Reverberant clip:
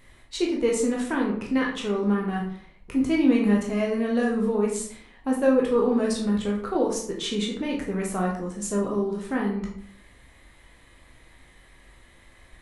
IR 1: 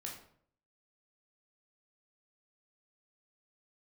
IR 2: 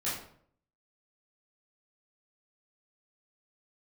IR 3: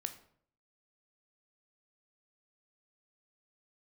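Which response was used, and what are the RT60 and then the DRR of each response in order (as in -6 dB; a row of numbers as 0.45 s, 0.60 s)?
1; 0.60 s, 0.60 s, 0.60 s; -2.0 dB, -10.5 dB, 7.5 dB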